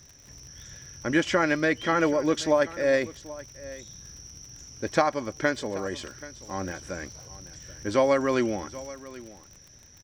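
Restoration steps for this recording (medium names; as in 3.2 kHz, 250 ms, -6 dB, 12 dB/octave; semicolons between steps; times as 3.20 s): de-click; inverse comb 781 ms -18 dB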